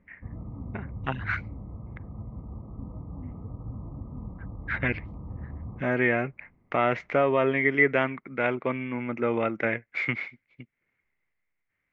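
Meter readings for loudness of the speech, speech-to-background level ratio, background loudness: −27.0 LKFS, 13.5 dB, −40.5 LKFS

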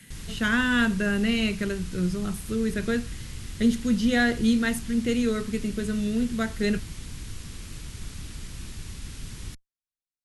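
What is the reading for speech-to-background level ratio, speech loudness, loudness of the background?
14.0 dB, −26.0 LKFS, −40.0 LKFS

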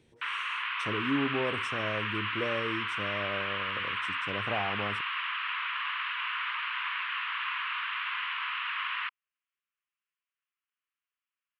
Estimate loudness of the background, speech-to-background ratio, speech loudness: −32.0 LKFS, −4.5 dB, −36.5 LKFS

